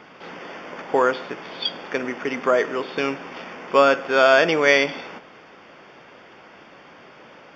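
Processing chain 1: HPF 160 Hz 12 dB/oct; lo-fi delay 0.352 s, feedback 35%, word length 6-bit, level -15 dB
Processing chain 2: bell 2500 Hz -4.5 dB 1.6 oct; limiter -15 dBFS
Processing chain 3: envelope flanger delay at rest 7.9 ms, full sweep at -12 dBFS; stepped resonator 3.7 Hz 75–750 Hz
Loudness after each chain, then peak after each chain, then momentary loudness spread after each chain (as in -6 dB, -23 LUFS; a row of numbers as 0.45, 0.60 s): -20.5, -28.0, -35.5 LUFS; -2.5, -15.0, -16.5 dBFS; 20, 23, 22 LU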